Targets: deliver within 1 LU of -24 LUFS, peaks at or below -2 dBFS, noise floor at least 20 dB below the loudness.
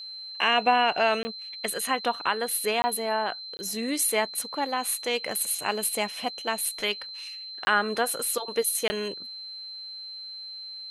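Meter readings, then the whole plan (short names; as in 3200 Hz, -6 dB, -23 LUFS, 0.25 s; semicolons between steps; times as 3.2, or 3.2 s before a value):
dropouts 5; longest dropout 20 ms; steady tone 4100 Hz; tone level -37 dBFS; loudness -27.5 LUFS; peak -8.5 dBFS; loudness target -24.0 LUFS
-> interpolate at 1.23/2.82/3.57/7.65/8.88, 20 ms; notch 4100 Hz, Q 30; gain +3.5 dB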